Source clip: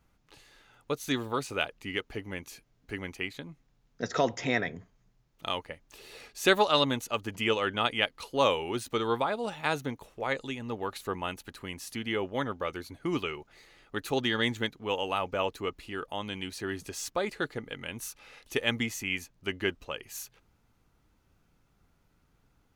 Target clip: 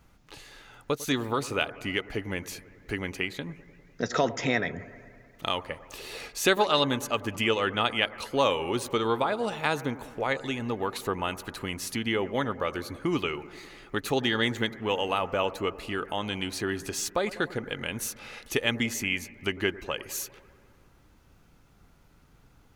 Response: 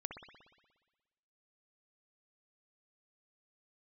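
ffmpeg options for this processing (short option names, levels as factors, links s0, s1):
-filter_complex "[0:a]acompressor=threshold=0.00708:ratio=1.5,asplit=2[s0][s1];[1:a]atrim=start_sample=2205,asetrate=26460,aresample=44100[s2];[s1][s2]afir=irnorm=-1:irlink=0,volume=0.282[s3];[s0][s3]amix=inputs=2:normalize=0,volume=2.24"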